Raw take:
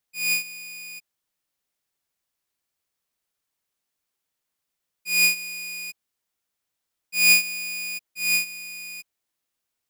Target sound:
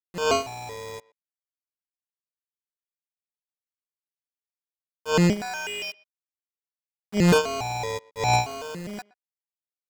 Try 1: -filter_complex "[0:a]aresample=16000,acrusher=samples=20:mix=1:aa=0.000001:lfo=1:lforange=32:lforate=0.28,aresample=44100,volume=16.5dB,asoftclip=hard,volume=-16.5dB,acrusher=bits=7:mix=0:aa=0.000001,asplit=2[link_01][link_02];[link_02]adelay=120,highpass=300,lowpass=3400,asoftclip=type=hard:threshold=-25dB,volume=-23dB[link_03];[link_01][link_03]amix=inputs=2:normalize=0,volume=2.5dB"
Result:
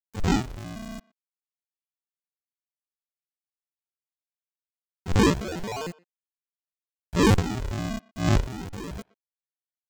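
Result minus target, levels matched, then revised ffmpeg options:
sample-and-hold swept by an LFO: distortion +16 dB
-filter_complex "[0:a]aresample=16000,acrusher=samples=6:mix=1:aa=0.000001:lfo=1:lforange=9.6:lforate=0.28,aresample=44100,volume=16.5dB,asoftclip=hard,volume=-16.5dB,acrusher=bits=7:mix=0:aa=0.000001,asplit=2[link_01][link_02];[link_02]adelay=120,highpass=300,lowpass=3400,asoftclip=type=hard:threshold=-25dB,volume=-23dB[link_03];[link_01][link_03]amix=inputs=2:normalize=0,volume=2.5dB"

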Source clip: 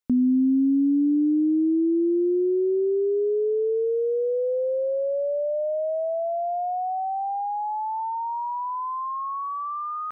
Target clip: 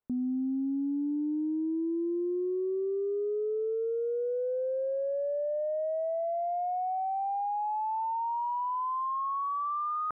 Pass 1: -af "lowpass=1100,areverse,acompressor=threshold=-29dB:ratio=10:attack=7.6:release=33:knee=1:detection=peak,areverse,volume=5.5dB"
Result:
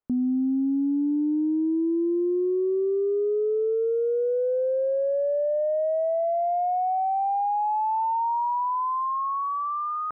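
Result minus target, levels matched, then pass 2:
downward compressor: peak gain reduction −7 dB
-af "lowpass=1100,areverse,acompressor=threshold=-36.5dB:ratio=10:attack=7.6:release=33:knee=1:detection=peak,areverse,volume=5.5dB"

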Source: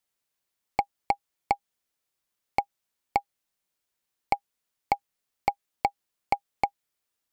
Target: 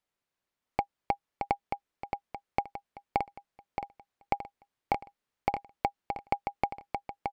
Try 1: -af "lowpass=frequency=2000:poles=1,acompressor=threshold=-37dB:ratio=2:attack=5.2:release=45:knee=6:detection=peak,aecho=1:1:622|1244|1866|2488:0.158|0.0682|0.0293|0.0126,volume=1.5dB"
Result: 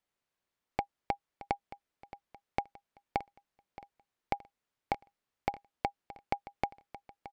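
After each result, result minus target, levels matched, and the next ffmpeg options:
echo-to-direct −10.5 dB; downward compressor: peak gain reduction +4 dB
-af "lowpass=frequency=2000:poles=1,acompressor=threshold=-37dB:ratio=2:attack=5.2:release=45:knee=6:detection=peak,aecho=1:1:622|1244|1866|2488|3110:0.531|0.228|0.0982|0.0422|0.0181,volume=1.5dB"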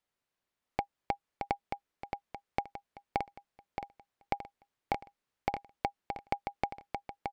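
downward compressor: peak gain reduction +4 dB
-af "lowpass=frequency=2000:poles=1,acompressor=threshold=-28.5dB:ratio=2:attack=5.2:release=45:knee=6:detection=peak,aecho=1:1:622|1244|1866|2488|3110:0.531|0.228|0.0982|0.0422|0.0181,volume=1.5dB"

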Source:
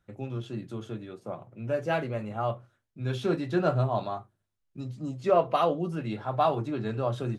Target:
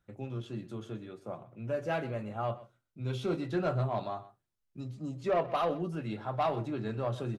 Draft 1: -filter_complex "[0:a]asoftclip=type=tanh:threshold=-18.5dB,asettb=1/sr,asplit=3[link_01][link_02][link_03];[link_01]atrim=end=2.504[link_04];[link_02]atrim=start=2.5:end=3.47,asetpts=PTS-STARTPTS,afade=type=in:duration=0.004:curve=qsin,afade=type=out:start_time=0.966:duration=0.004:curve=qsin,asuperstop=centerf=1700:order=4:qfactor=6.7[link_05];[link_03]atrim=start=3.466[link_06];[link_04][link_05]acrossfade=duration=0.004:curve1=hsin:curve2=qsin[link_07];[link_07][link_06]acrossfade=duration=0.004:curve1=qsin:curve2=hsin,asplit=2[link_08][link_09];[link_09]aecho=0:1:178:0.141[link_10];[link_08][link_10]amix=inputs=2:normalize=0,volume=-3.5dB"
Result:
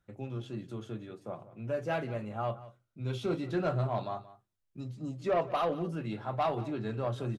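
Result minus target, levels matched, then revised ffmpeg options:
echo 52 ms late
-filter_complex "[0:a]asoftclip=type=tanh:threshold=-18.5dB,asettb=1/sr,asplit=3[link_01][link_02][link_03];[link_01]atrim=end=2.504[link_04];[link_02]atrim=start=2.5:end=3.47,asetpts=PTS-STARTPTS,afade=type=in:duration=0.004:curve=qsin,afade=type=out:start_time=0.966:duration=0.004:curve=qsin,asuperstop=centerf=1700:order=4:qfactor=6.7[link_05];[link_03]atrim=start=3.466[link_06];[link_04][link_05]acrossfade=duration=0.004:curve1=hsin:curve2=qsin[link_07];[link_07][link_06]acrossfade=duration=0.004:curve1=qsin:curve2=hsin,asplit=2[link_08][link_09];[link_09]aecho=0:1:126:0.141[link_10];[link_08][link_10]amix=inputs=2:normalize=0,volume=-3.5dB"

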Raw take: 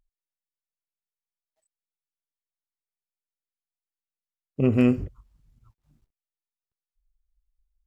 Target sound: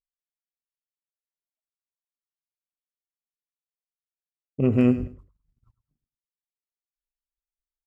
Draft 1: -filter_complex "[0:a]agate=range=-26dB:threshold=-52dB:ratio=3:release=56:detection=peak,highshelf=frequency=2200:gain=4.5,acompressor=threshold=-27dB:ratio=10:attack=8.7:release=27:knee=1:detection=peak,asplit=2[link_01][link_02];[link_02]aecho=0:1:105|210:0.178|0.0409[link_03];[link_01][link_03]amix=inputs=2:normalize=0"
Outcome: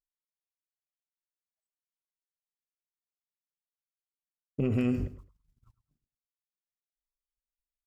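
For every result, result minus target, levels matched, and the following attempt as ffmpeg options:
downward compressor: peak gain reduction +11 dB; 4,000 Hz band +5.5 dB
-filter_complex "[0:a]agate=range=-26dB:threshold=-52dB:ratio=3:release=56:detection=peak,highshelf=frequency=2200:gain=4.5,asplit=2[link_01][link_02];[link_02]aecho=0:1:105|210:0.178|0.0409[link_03];[link_01][link_03]amix=inputs=2:normalize=0"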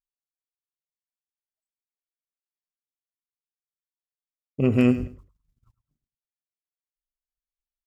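4,000 Hz band +6.0 dB
-filter_complex "[0:a]agate=range=-26dB:threshold=-52dB:ratio=3:release=56:detection=peak,highshelf=frequency=2200:gain=-5.5,asplit=2[link_01][link_02];[link_02]aecho=0:1:105|210:0.178|0.0409[link_03];[link_01][link_03]amix=inputs=2:normalize=0"

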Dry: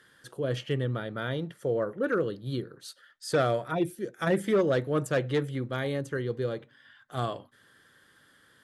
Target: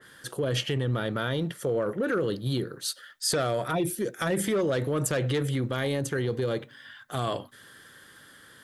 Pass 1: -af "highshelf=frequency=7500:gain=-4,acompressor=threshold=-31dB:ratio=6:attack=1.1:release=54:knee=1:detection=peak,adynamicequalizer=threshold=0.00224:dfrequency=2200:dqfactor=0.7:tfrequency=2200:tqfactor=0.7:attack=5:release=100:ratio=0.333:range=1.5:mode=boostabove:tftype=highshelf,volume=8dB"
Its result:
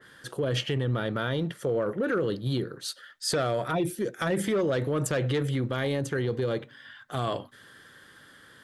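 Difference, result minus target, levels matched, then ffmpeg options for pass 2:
8,000 Hz band −4.0 dB
-af "highshelf=frequency=7500:gain=5.5,acompressor=threshold=-31dB:ratio=6:attack=1.1:release=54:knee=1:detection=peak,adynamicequalizer=threshold=0.00224:dfrequency=2200:dqfactor=0.7:tfrequency=2200:tqfactor=0.7:attack=5:release=100:ratio=0.333:range=1.5:mode=boostabove:tftype=highshelf,volume=8dB"

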